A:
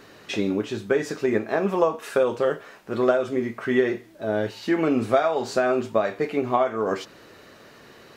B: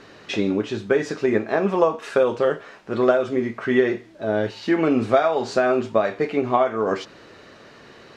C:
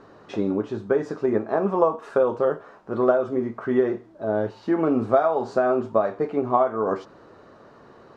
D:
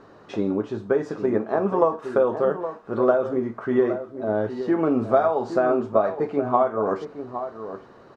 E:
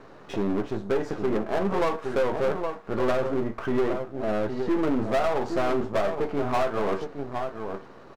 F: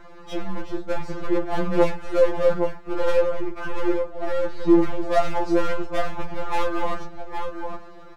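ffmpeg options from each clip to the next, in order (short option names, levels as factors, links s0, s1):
-af "lowpass=6300,volume=1.33"
-af "highshelf=f=1600:t=q:w=1.5:g=-10.5,volume=0.75"
-filter_complex "[0:a]asplit=2[s0][s1];[s1]adelay=816.3,volume=0.316,highshelf=f=4000:g=-18.4[s2];[s0][s2]amix=inputs=2:normalize=0"
-filter_complex "[0:a]aeval=exprs='if(lt(val(0),0),0.251*val(0),val(0))':c=same,asplit=2[s0][s1];[s1]adelay=15,volume=0.251[s2];[s0][s2]amix=inputs=2:normalize=0,asoftclip=type=tanh:threshold=0.0841,volume=1.58"
-af "afftfilt=real='re*2.83*eq(mod(b,8),0)':imag='im*2.83*eq(mod(b,8),0)':win_size=2048:overlap=0.75,volume=1.68"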